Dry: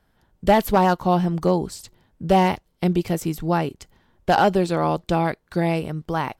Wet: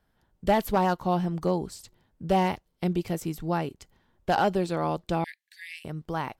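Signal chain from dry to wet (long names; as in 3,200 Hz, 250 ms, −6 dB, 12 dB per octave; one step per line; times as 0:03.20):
0:05.24–0:05.85: Chebyshev high-pass filter 1,700 Hz, order 8
level −6.5 dB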